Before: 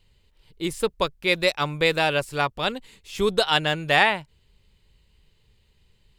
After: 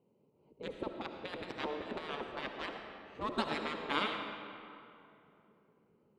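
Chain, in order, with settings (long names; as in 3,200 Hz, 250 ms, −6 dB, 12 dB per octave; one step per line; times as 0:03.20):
adaptive Wiener filter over 25 samples
gate on every frequency bin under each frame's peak −15 dB weak
0:00.67–0:02.72: compressor whose output falls as the input rises −36 dBFS, ratio −0.5
resonant band-pass 350 Hz, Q 0.64
convolution reverb RT60 2.7 s, pre-delay 30 ms, DRR 4.5 dB
level +5 dB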